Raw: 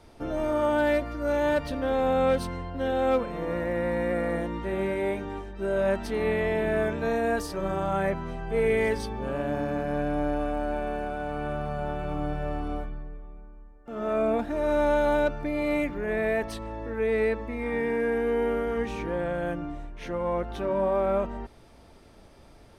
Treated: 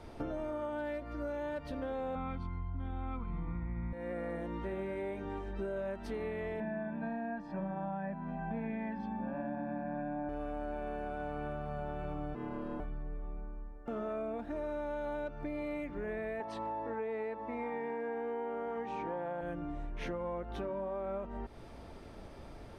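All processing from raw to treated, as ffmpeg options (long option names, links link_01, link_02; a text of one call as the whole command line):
ffmpeg -i in.wav -filter_complex "[0:a]asettb=1/sr,asplit=3[link_01][link_02][link_03];[link_01]atrim=end=2.154[link_04];[link_02]atrim=start=2.15:end=3.93,asetpts=PTS-STARTPTS,afade=type=in:duration=0.004:curve=qsin,afade=type=out:start_time=1.776:duration=0.004:curve=qsin,lowpass=2800,asubboost=boost=12:cutoff=150,aecho=1:1:0.9:0.91,atrim=end_sample=78498[link_05];[link_03]atrim=start=3.926[link_06];[link_04][link_05]acrossfade=duration=0.004:curve1=hsin:curve2=qsin[link_07];[link_07][link_06]acrossfade=duration=0.004:curve1=qsin:curve2=hsin,asettb=1/sr,asplit=3[link_08][link_09][link_10];[link_08]atrim=end=6.604[link_11];[link_09]atrim=start=6.6:end=10.29,asetpts=PTS-STARTPTS,afade=type=in:duration=0.004:curve=qsin,afade=type=out:start_time=3.686:duration=0.004:curve=qsin,lowpass=2000,lowshelf=frequency=140:width_type=q:width=3:gain=-13,aecho=1:1:1.2:0.85,atrim=end_sample=162729[link_12];[link_10]atrim=start=10.286[link_13];[link_11][link_12]acrossfade=duration=0.004:curve1=hsin:curve2=qsin[link_14];[link_14][link_13]acrossfade=duration=0.004:curve1=qsin:curve2=hsin,asettb=1/sr,asplit=3[link_15][link_16][link_17];[link_15]atrim=end=12.354[link_18];[link_16]atrim=start=12.35:end=12.8,asetpts=PTS-STARTPTS,afade=type=in:duration=0.004:curve=qsin,afade=type=out:start_time=0.446:duration=0.004:curve=qsin,bandreject=frequency=550:width=5.3,aeval=exprs='val(0)+0.00224*sin(2*PI*1000*n/s)':channel_layout=same,aeval=exprs='val(0)*sin(2*PI*280*n/s)':channel_layout=same[link_19];[link_17]atrim=start=12.796[link_20];[link_18][link_19]acrossfade=duration=0.004:curve1=hsin:curve2=qsin[link_21];[link_21][link_20]acrossfade=duration=0.004:curve1=qsin:curve2=hsin,asettb=1/sr,asplit=3[link_22][link_23][link_24];[link_22]atrim=end=16.404[link_25];[link_23]atrim=start=16.4:end=19.41,asetpts=PTS-STARTPTS,afade=type=in:duration=0.004:curve=qsin,afade=type=out:start_time=3.006:duration=0.004:curve=qsin,highpass=130,lowpass=7800,equalizer=frequency=840:width=2:gain=12.5[link_26];[link_24]atrim=start=19.406[link_27];[link_25][link_26]acrossfade=duration=0.004:curve1=hsin:curve2=qsin[link_28];[link_28][link_27]acrossfade=duration=0.004:curve1=qsin:curve2=hsin,highshelf=frequency=3600:gain=-8.5,acompressor=threshold=-39dB:ratio=12,volume=3.5dB" out.wav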